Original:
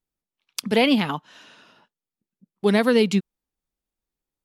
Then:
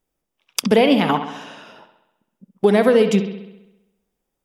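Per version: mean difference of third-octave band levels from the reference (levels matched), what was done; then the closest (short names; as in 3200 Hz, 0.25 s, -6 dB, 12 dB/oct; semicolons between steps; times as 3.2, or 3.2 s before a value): 5.5 dB: bell 550 Hz +7 dB 1.4 oct; notch 4200 Hz, Q 6.4; compressor 4:1, threshold -21 dBFS, peak gain reduction 10.5 dB; on a send: analogue delay 66 ms, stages 2048, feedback 61%, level -10 dB; on the sum: gain +8 dB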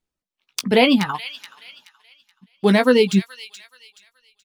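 3.5 dB: median filter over 3 samples; reverb removal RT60 1.7 s; doubler 16 ms -8 dB; thin delay 0.426 s, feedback 32%, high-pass 2400 Hz, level -10 dB; gain +4 dB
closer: second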